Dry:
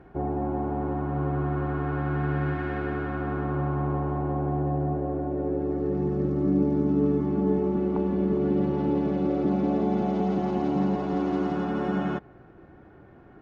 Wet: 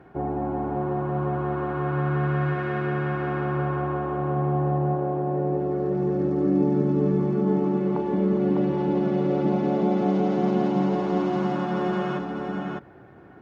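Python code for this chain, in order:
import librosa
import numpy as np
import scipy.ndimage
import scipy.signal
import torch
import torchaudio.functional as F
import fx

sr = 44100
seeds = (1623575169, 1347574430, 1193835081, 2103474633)

p1 = scipy.signal.sosfilt(scipy.signal.butter(2, 100.0, 'highpass', fs=sr, output='sos'), x)
p2 = fx.peak_eq(p1, sr, hz=270.0, db=-2.5, octaves=2.2)
p3 = p2 + fx.echo_single(p2, sr, ms=603, db=-4.0, dry=0)
y = p3 * 10.0 ** (3.0 / 20.0)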